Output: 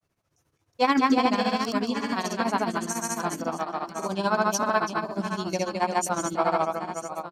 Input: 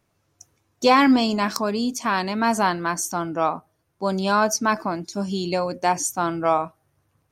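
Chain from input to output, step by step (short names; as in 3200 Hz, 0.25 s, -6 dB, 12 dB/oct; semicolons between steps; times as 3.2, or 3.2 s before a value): reverse bouncing-ball echo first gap 0.25 s, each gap 1.3×, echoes 5; grains 99 ms, grains 14/s, pitch spread up and down by 0 st; gain -3.5 dB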